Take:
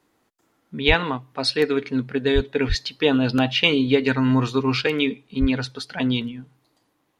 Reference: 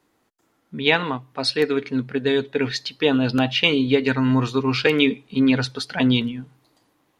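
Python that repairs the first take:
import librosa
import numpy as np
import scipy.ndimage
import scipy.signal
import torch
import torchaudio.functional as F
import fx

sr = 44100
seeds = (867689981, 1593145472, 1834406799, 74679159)

y = fx.fix_deplosive(x, sr, at_s=(0.87, 2.34, 2.68, 5.4))
y = fx.gain(y, sr, db=fx.steps((0.0, 0.0), (4.81, 4.0)))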